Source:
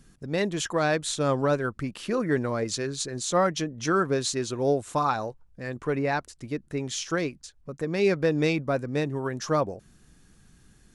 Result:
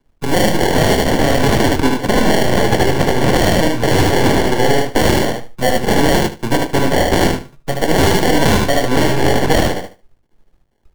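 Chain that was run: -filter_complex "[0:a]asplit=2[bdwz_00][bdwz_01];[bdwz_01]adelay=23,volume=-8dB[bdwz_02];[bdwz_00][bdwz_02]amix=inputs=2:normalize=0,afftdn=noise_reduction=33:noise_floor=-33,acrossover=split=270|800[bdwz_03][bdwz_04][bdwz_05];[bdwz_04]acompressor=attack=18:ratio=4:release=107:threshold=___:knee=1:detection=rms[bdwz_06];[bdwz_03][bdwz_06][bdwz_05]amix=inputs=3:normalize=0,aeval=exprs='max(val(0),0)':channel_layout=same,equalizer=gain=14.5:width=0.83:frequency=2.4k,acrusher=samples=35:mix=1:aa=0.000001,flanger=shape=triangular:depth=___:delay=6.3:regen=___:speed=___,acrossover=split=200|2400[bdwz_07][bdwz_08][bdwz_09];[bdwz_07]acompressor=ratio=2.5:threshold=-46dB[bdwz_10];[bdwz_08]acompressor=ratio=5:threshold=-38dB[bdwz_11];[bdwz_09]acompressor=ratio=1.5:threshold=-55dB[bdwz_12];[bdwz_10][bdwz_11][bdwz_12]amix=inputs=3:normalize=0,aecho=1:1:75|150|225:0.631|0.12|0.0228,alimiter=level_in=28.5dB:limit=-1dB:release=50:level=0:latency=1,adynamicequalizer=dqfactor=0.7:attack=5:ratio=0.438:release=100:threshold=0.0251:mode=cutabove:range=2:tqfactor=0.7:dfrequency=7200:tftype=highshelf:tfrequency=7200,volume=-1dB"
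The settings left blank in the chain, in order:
-37dB, 5.9, -65, 1.8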